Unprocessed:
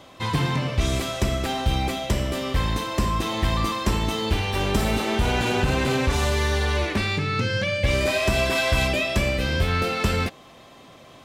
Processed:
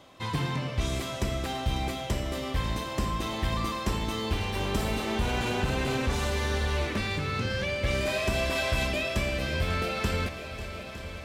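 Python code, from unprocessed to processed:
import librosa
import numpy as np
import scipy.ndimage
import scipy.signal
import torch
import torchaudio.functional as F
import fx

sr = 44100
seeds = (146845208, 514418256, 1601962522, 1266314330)

y = fx.echo_swing(x, sr, ms=909, ratio=1.5, feedback_pct=66, wet_db=-13.5)
y = y * 10.0 ** (-6.5 / 20.0)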